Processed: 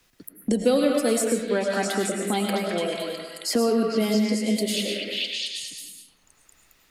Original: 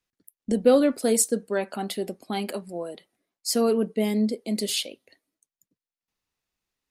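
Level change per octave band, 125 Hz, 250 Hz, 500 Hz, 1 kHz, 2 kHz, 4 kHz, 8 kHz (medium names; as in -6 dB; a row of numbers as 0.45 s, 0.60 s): +3.5 dB, +2.0 dB, +1.0 dB, +3.5 dB, +7.0 dB, +5.0 dB, -1.0 dB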